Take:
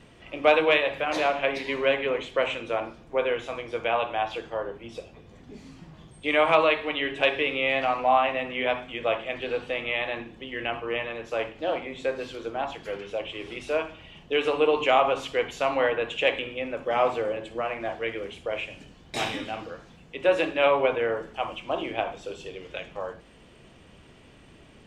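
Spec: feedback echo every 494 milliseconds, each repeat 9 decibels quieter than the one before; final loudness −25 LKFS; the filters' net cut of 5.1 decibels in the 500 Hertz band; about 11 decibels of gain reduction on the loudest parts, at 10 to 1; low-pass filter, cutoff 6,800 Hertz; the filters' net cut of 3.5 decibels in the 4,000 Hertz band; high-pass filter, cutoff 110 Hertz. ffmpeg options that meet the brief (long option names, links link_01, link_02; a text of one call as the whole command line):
ffmpeg -i in.wav -af "highpass=110,lowpass=6800,equalizer=frequency=500:width_type=o:gain=-6,equalizer=frequency=4000:width_type=o:gain=-5,acompressor=threshold=-29dB:ratio=10,aecho=1:1:494|988|1482|1976:0.355|0.124|0.0435|0.0152,volume=10dB" out.wav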